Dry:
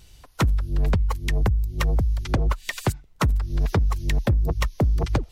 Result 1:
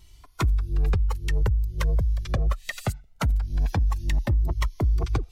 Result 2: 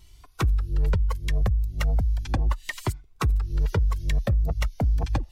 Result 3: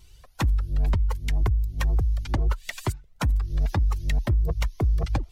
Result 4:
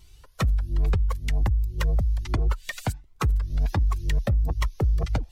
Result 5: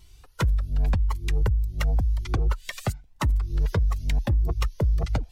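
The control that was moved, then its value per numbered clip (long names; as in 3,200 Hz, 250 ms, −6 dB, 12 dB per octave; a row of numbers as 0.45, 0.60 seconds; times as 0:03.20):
flanger whose copies keep moving one way, speed: 0.22, 0.36, 2.1, 1.3, 0.91 Hertz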